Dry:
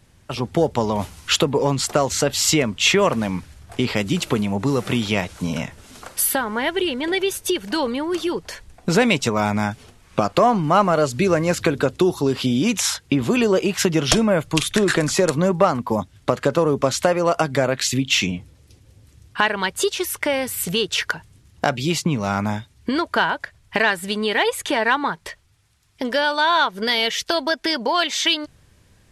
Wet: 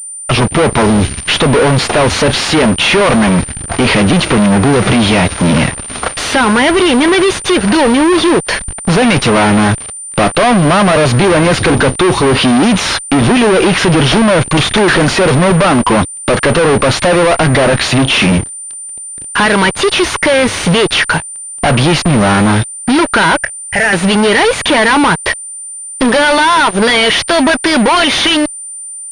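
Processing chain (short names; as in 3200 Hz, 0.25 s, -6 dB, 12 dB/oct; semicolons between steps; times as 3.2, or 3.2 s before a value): 0.86–1.33 band shelf 820 Hz -15.5 dB; fuzz box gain 36 dB, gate -41 dBFS; 23.36–23.93 fixed phaser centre 1100 Hz, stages 6; pulse-width modulation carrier 9100 Hz; gain +6 dB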